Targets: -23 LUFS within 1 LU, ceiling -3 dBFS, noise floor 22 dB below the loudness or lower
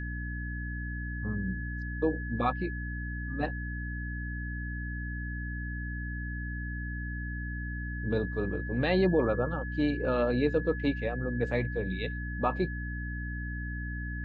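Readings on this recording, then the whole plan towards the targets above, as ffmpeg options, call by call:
hum 60 Hz; harmonics up to 300 Hz; hum level -34 dBFS; steady tone 1700 Hz; tone level -40 dBFS; loudness -32.5 LUFS; peak -14.0 dBFS; loudness target -23.0 LUFS
-> -af "bandreject=f=60:t=h:w=6,bandreject=f=120:t=h:w=6,bandreject=f=180:t=h:w=6,bandreject=f=240:t=h:w=6,bandreject=f=300:t=h:w=6"
-af "bandreject=f=1.7k:w=30"
-af "volume=9.5dB"

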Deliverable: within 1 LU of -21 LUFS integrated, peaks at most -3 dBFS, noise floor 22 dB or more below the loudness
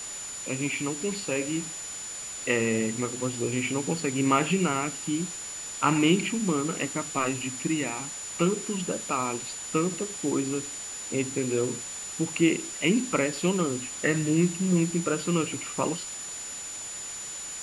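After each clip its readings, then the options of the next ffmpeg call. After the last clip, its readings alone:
steady tone 7000 Hz; tone level -36 dBFS; noise floor -38 dBFS; noise floor target -50 dBFS; loudness -28.0 LUFS; peak -8.5 dBFS; loudness target -21.0 LUFS
-> -af "bandreject=f=7k:w=30"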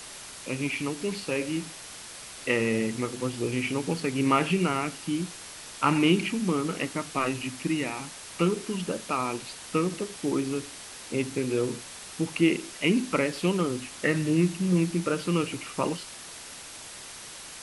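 steady tone none; noise floor -43 dBFS; noise floor target -50 dBFS
-> -af "afftdn=nr=7:nf=-43"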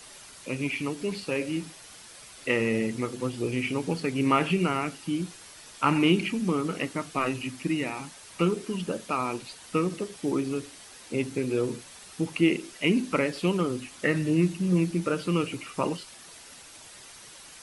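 noise floor -48 dBFS; noise floor target -50 dBFS
-> -af "afftdn=nr=6:nf=-48"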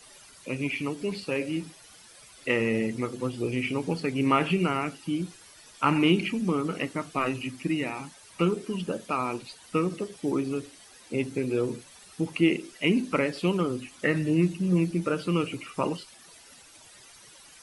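noise floor -52 dBFS; loudness -28.5 LUFS; peak -9.0 dBFS; loudness target -21.0 LUFS
-> -af "volume=7.5dB,alimiter=limit=-3dB:level=0:latency=1"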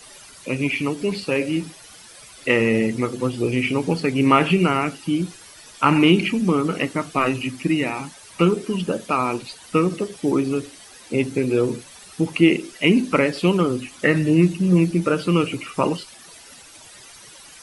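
loudness -21.0 LUFS; peak -3.0 dBFS; noise floor -45 dBFS

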